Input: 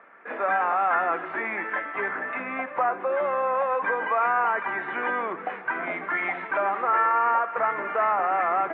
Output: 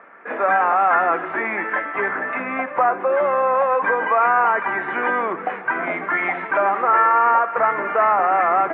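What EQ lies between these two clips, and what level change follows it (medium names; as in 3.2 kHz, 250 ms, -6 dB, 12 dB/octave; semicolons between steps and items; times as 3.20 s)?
distance through air 210 m; +7.5 dB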